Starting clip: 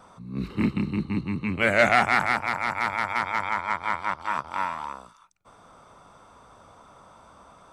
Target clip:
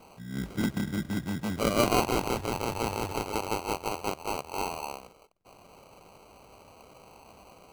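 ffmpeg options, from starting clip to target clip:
ffmpeg -i in.wav -filter_complex "[0:a]asettb=1/sr,asplit=3[link_01][link_02][link_03];[link_01]atrim=end=2.344[link_04];[link_02]atrim=start=2.34:end=3.17,asetpts=PTS-STARTPTS,afade=type=in:duration=0.004:curve=qsin,afade=type=out:start_time=0.826:duration=0.004:curve=qsin,aemphasis=mode=reproduction:type=bsi[link_05];[link_03]atrim=start=3.166[link_06];[link_04][link_05]acrossfade=duration=0.004:curve1=hsin:curve2=qsin[link_07];[link_07][link_06]acrossfade=duration=0.004:curve1=qsin:curve2=hsin,asplit=2[link_08][link_09];[link_09]acompressor=threshold=-32dB:ratio=6,volume=-2dB[link_10];[link_08][link_10]amix=inputs=2:normalize=0,acrusher=samples=25:mix=1:aa=0.000001,volume=-6.5dB" out.wav

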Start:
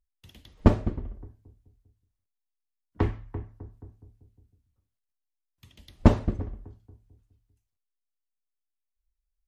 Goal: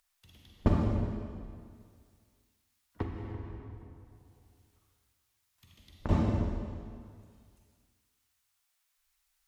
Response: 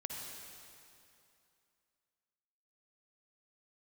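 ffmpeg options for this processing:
-filter_complex "[0:a]acrossover=split=720[link_01][link_02];[link_02]acompressor=mode=upward:threshold=-51dB:ratio=2.5[link_03];[link_01][link_03]amix=inputs=2:normalize=0[link_04];[1:a]atrim=start_sample=2205,asetrate=57330,aresample=44100[link_05];[link_04][link_05]afir=irnorm=-1:irlink=0,asettb=1/sr,asplit=3[link_06][link_07][link_08];[link_06]atrim=end=3.024[link_09];[link_07]atrim=start=3.02:end=6.09,asetpts=PTS-STARTPTS,afade=type=in:duration=0.004:curve=qsin,afade=type=out:start_time=3.066:duration=0.004:curve=qsin,acompressor=threshold=-32dB:ratio=12[link_10];[link_08]atrim=start=6.086[link_11];[link_09][link_10]acrossfade=duration=0.004:curve1=hsin:curve2=qsin[link_12];[link_12][link_11]acrossfade=duration=0.004:curve1=qsin:curve2=hsin,volume=-2.5dB"

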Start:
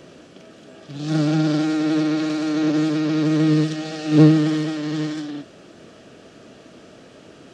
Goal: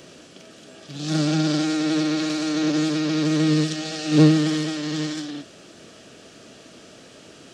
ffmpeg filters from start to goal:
ffmpeg -i in.wav -af "highshelf=frequency=2900:gain=11,volume=-2.5dB" out.wav

